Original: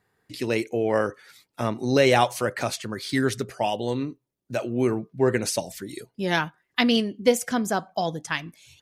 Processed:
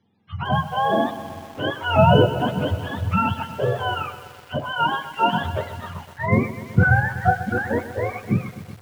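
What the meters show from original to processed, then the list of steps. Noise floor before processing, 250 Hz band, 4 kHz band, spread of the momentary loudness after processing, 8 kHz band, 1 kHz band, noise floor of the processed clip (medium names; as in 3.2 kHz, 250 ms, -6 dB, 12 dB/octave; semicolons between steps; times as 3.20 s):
-77 dBFS, +0.5 dB, -0.5 dB, 15 LU, under -10 dB, +7.0 dB, -45 dBFS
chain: spectrum inverted on a logarithmic axis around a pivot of 600 Hz; steep low-pass 6.4 kHz 48 dB/octave; bit-crushed delay 125 ms, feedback 80%, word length 7-bit, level -14 dB; trim +4 dB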